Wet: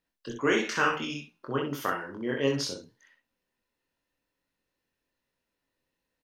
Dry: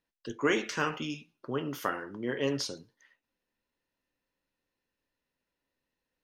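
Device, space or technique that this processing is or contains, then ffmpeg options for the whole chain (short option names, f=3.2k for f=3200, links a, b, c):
slapback doubling: -filter_complex "[0:a]asettb=1/sr,asplit=3[a][b][c];[a]atrim=end=0.634[d];[b]atrim=start=0.63:end=1.61,asetpts=PTS-STARTPTS,afade=t=in:d=0.004:c=qsin,afade=t=out:st=0.976:d=0.004:c=qsin,equalizer=f=1.4k:w=0.82:g=4.5[e];[c]atrim=start=1.606[f];[d][e]acrossfade=d=0.004:c1=hsin:c2=qsin[g];[g][f]acrossfade=d=0.004:c1=qsin:c2=hsin,asplit=3[h][i][j];[i]adelay=22,volume=-3.5dB[k];[j]adelay=63,volume=-5dB[l];[h][k][l]amix=inputs=3:normalize=0"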